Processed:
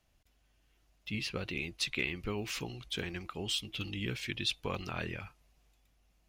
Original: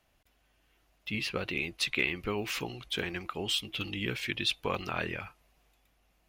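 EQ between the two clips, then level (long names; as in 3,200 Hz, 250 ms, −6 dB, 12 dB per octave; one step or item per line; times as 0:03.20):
low-shelf EQ 250 Hz +9 dB
parametric band 6,200 Hz +6.5 dB 1.7 octaves
−7.0 dB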